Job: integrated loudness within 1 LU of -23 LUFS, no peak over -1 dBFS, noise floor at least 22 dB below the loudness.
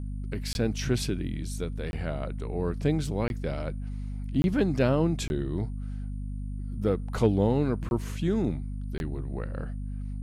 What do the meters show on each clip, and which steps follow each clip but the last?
dropouts 7; longest dropout 21 ms; hum 50 Hz; harmonics up to 250 Hz; hum level -31 dBFS; loudness -30.0 LUFS; peak -11.5 dBFS; loudness target -23.0 LUFS
-> interpolate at 0.53/1.91/3.28/4.42/5.28/7.89/8.98, 21 ms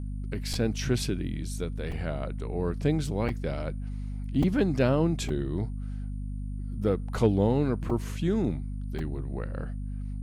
dropouts 0; hum 50 Hz; harmonics up to 250 Hz; hum level -31 dBFS
-> notches 50/100/150/200/250 Hz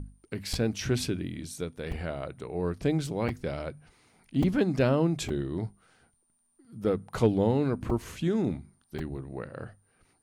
hum none; loudness -30.0 LUFS; peak -12.0 dBFS; loudness target -23.0 LUFS
-> gain +7 dB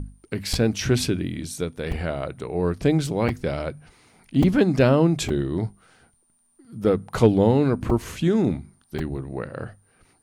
loudness -23.0 LUFS; peak -5.0 dBFS; noise floor -64 dBFS

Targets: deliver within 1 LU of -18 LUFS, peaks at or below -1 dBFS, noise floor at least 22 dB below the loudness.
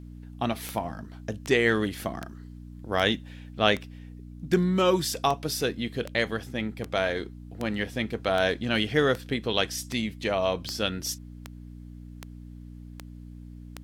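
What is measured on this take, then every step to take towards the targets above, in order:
clicks 18; hum 60 Hz; harmonics up to 300 Hz; hum level -41 dBFS; loudness -27.5 LUFS; peak -6.5 dBFS; loudness target -18.0 LUFS
-> de-click; de-hum 60 Hz, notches 5; gain +9.5 dB; limiter -1 dBFS

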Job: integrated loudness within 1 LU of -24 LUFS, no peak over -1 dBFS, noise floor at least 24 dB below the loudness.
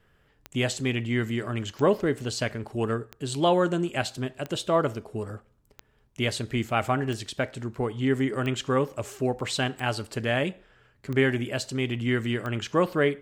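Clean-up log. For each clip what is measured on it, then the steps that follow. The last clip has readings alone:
clicks 10; loudness -27.5 LUFS; peak -9.5 dBFS; loudness target -24.0 LUFS
-> de-click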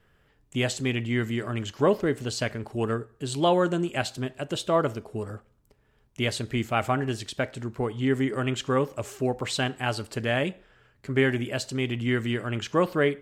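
clicks 0; loudness -27.5 LUFS; peak -9.5 dBFS; loudness target -24.0 LUFS
-> gain +3.5 dB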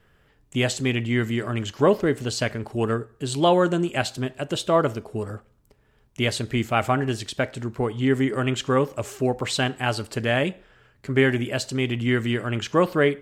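loudness -24.0 LUFS; peak -6.0 dBFS; noise floor -61 dBFS

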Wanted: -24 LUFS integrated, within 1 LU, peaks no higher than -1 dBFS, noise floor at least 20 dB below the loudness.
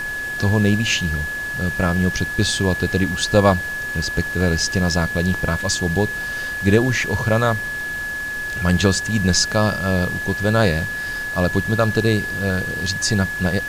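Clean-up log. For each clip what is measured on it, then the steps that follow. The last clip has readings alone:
steady tone 1700 Hz; tone level -24 dBFS; noise floor -27 dBFS; noise floor target -40 dBFS; loudness -19.5 LUFS; peak -1.0 dBFS; loudness target -24.0 LUFS
-> notch 1700 Hz, Q 30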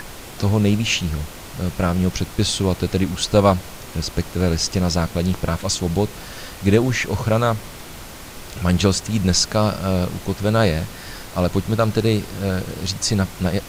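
steady tone none; noise floor -37 dBFS; noise floor target -41 dBFS
-> noise print and reduce 6 dB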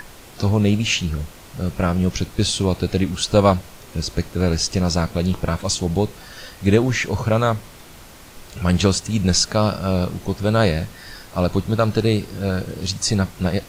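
noise floor -42 dBFS; loudness -20.5 LUFS; peak -1.5 dBFS; loudness target -24.0 LUFS
-> gain -3.5 dB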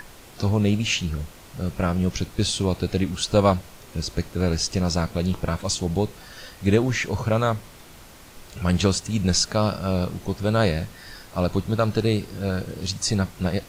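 loudness -24.0 LUFS; peak -5.0 dBFS; noise floor -46 dBFS

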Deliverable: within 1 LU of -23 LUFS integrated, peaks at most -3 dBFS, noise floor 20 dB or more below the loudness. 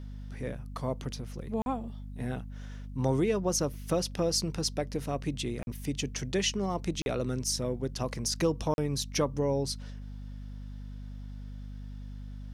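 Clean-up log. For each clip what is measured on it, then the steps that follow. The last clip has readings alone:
dropouts 4; longest dropout 41 ms; hum 50 Hz; harmonics up to 250 Hz; hum level -39 dBFS; loudness -32.0 LUFS; peak -14.5 dBFS; loudness target -23.0 LUFS
-> interpolate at 1.62/5.63/7.02/8.74, 41 ms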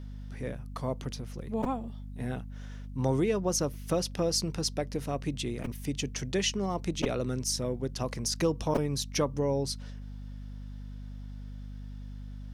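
dropouts 0; hum 50 Hz; harmonics up to 250 Hz; hum level -39 dBFS
-> notches 50/100/150/200/250 Hz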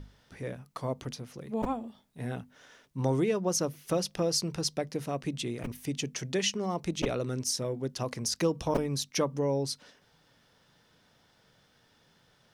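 hum none; loudness -32.0 LUFS; peak -14.5 dBFS; loudness target -23.0 LUFS
-> gain +9 dB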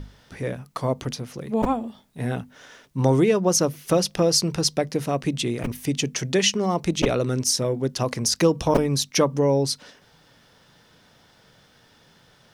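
loudness -23.0 LUFS; peak -5.5 dBFS; noise floor -57 dBFS

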